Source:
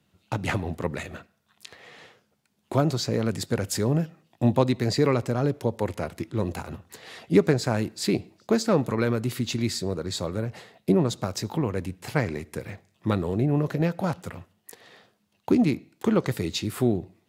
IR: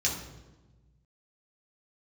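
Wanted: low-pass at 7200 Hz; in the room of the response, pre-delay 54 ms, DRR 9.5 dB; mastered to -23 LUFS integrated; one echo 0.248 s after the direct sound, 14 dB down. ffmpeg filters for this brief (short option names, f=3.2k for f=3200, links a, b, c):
-filter_complex "[0:a]lowpass=7.2k,aecho=1:1:248:0.2,asplit=2[a][b];[1:a]atrim=start_sample=2205,adelay=54[c];[b][c]afir=irnorm=-1:irlink=0,volume=-17dB[d];[a][d]amix=inputs=2:normalize=0,volume=2.5dB"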